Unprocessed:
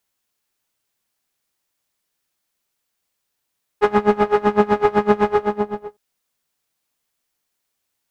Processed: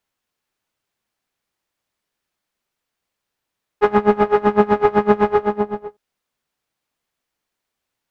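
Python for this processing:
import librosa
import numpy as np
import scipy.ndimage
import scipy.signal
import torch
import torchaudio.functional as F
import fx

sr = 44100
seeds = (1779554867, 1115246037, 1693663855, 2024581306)

y = fx.high_shelf(x, sr, hz=4800.0, db=-11.0)
y = F.gain(torch.from_numpy(y), 1.5).numpy()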